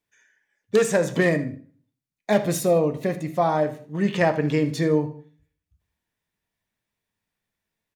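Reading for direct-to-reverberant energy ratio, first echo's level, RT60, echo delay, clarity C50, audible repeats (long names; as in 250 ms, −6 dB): 7.5 dB, −16.0 dB, 0.45 s, 78 ms, 12.0 dB, 2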